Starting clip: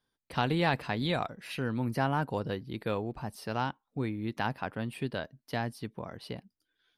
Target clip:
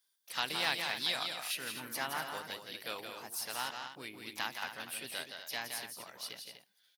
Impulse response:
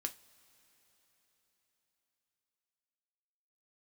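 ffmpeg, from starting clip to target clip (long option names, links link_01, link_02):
-filter_complex "[0:a]aderivative,aecho=1:1:169.1|244.9:0.501|0.316,asplit=2[link_01][link_02];[1:a]atrim=start_sample=2205[link_03];[link_02][link_03]afir=irnorm=-1:irlink=0,volume=-15dB[link_04];[link_01][link_04]amix=inputs=2:normalize=0,asplit=4[link_05][link_06][link_07][link_08];[link_06]asetrate=52444,aresample=44100,atempo=0.840896,volume=-11dB[link_09];[link_07]asetrate=55563,aresample=44100,atempo=0.793701,volume=-15dB[link_10];[link_08]asetrate=58866,aresample=44100,atempo=0.749154,volume=-12dB[link_11];[link_05][link_09][link_10][link_11]amix=inputs=4:normalize=0,volume=8dB"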